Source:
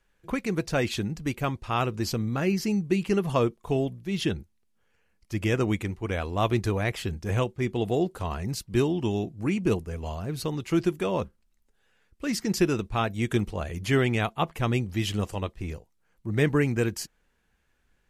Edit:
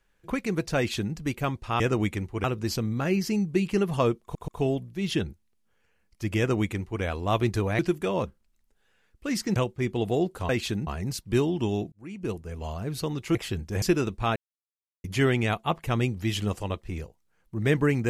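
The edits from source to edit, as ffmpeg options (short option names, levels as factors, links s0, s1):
-filter_complex "[0:a]asplit=14[s0][s1][s2][s3][s4][s5][s6][s7][s8][s9][s10][s11][s12][s13];[s0]atrim=end=1.802[s14];[s1]atrim=start=5.478:end=6.122[s15];[s2]atrim=start=1.798:end=3.712[s16];[s3]atrim=start=3.578:end=3.712[s17];[s4]atrim=start=3.578:end=6.892[s18];[s5]atrim=start=10.768:end=12.542[s19];[s6]atrim=start=7.358:end=8.292[s20];[s7]atrim=start=0.768:end=1.152[s21];[s8]atrim=start=8.288:end=9.34,asetpts=PTS-STARTPTS,afade=t=out:st=1.048:d=0.004:c=hsin[s22];[s9]atrim=start=9.34:end=10.772,asetpts=PTS-STARTPTS,afade=t=in:d=0.8[s23];[s10]atrim=start=6.888:end=7.362[s24];[s11]atrim=start=12.538:end=13.08,asetpts=PTS-STARTPTS,afade=t=out:st=0.538:d=0.004:c=hsin[s25];[s12]atrim=start=13.08:end=13.76,asetpts=PTS-STARTPTS,volume=0[s26];[s13]atrim=start=13.76,asetpts=PTS-STARTPTS,afade=t=in:d=0.004:c=hsin[s27];[s14][s15]acrossfade=d=0.004:c1=hsin:c2=hsin[s28];[s28][s16]acrossfade=d=0.004:c1=hsin:c2=hsin[s29];[s29][s17]acrossfade=d=0.004:c1=hsin:c2=hsin[s30];[s30][s18]acrossfade=d=0.004:c1=hsin:c2=hsin[s31];[s31][s19]acrossfade=d=0.004:c1=hsin:c2=hsin[s32];[s32][s20]acrossfade=d=0.004:c1=hsin:c2=hsin[s33];[s33][s21]acrossfade=d=0.004:c1=hsin:c2=hsin[s34];[s22][s23]concat=n=2:v=0:a=1[s35];[s34][s35]acrossfade=d=0.004:c1=hsin:c2=hsin[s36];[s36][s24]acrossfade=d=0.004:c1=hsin:c2=hsin[s37];[s25][s26][s27]concat=n=3:v=0:a=1[s38];[s37][s38]acrossfade=d=0.004:c1=hsin:c2=hsin"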